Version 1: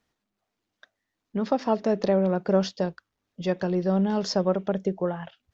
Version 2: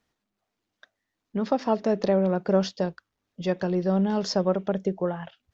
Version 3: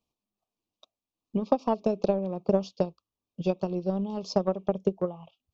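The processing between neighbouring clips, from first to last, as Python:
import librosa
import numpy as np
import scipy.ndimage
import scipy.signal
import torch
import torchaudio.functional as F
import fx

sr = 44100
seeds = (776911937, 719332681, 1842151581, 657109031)

y1 = x
y2 = scipy.signal.sosfilt(scipy.signal.ellip(3, 1.0, 40, [1200.0, 2400.0], 'bandstop', fs=sr, output='sos'), y1)
y2 = fx.wow_flutter(y2, sr, seeds[0], rate_hz=2.1, depth_cents=28.0)
y2 = fx.transient(y2, sr, attack_db=11, sustain_db=-2)
y2 = F.gain(torch.from_numpy(y2), -8.0).numpy()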